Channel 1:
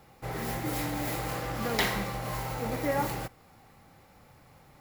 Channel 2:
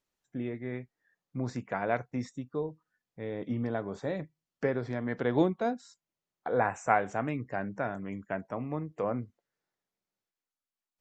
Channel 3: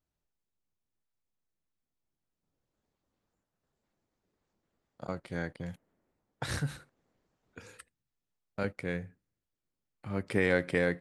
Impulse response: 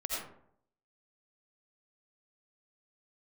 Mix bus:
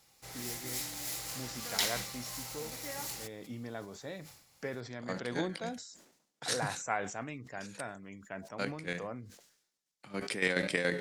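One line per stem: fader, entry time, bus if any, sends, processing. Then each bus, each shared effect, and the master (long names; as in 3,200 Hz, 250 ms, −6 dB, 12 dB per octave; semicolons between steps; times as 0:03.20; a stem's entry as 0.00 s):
−17.0 dB, 0.00 s, no send, high-shelf EQ 3,600 Hz +10 dB
−11.0 dB, 0.00 s, no send, high-shelf EQ 5,600 Hz +3.5 dB
+1.0 dB, 0.00 s, no send, high-pass filter 150 Hz 24 dB per octave; flanger 0.55 Hz, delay 9 ms, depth 4.9 ms, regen +87%; square-wave tremolo 7.1 Hz, depth 65%, duty 40%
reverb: not used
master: parametric band 6,100 Hz +14.5 dB 2.5 octaves; level that may fall only so fast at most 79 dB per second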